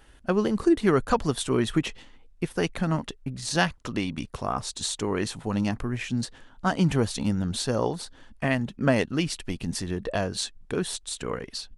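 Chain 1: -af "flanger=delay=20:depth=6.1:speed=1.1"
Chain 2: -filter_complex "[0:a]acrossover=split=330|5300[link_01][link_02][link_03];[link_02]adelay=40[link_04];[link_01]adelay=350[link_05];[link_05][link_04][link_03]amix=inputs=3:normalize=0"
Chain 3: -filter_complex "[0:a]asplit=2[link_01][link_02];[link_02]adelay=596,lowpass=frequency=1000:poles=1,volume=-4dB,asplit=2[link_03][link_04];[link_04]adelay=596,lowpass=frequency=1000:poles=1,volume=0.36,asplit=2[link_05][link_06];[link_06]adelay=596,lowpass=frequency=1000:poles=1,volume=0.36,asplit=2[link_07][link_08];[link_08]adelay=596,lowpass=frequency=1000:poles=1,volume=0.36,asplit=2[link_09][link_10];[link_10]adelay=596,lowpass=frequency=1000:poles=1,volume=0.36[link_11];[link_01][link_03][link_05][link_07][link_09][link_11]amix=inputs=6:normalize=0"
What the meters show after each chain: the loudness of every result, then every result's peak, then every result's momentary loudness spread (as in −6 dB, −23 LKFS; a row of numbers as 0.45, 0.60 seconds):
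−31.0, −29.0, −26.5 LKFS; −9.0, −7.5, −6.0 dBFS; 9, 8, 7 LU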